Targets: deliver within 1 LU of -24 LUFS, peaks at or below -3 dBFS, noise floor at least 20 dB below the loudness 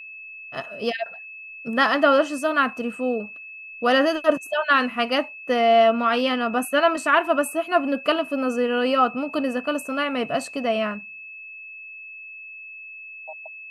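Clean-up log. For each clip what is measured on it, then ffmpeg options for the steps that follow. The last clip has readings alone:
steady tone 2.6 kHz; tone level -37 dBFS; loudness -22.0 LUFS; peak level -5.0 dBFS; loudness target -24.0 LUFS
-> -af "bandreject=f=2600:w=30"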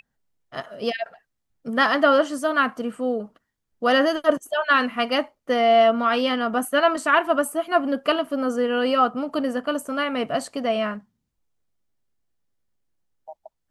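steady tone not found; loudness -22.0 LUFS; peak level -5.0 dBFS; loudness target -24.0 LUFS
-> -af "volume=0.794"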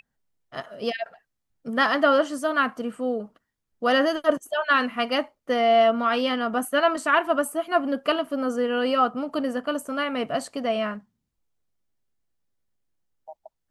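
loudness -24.0 LUFS; peak level -7.0 dBFS; noise floor -80 dBFS

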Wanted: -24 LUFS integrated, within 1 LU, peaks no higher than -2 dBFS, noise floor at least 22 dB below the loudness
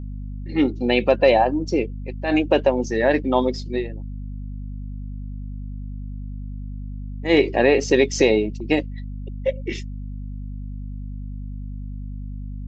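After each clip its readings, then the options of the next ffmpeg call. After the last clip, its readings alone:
hum 50 Hz; highest harmonic 250 Hz; hum level -29 dBFS; loudness -20.5 LUFS; peak level -3.5 dBFS; loudness target -24.0 LUFS
-> -af "bandreject=f=50:t=h:w=6,bandreject=f=100:t=h:w=6,bandreject=f=150:t=h:w=6,bandreject=f=200:t=h:w=6,bandreject=f=250:t=h:w=6"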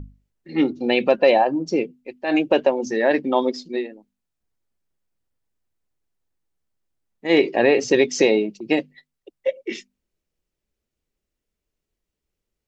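hum not found; loudness -20.5 LUFS; peak level -4.0 dBFS; loudness target -24.0 LUFS
-> -af "volume=0.668"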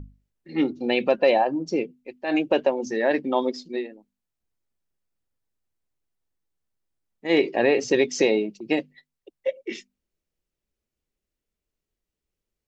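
loudness -24.0 LUFS; peak level -7.5 dBFS; noise floor -86 dBFS

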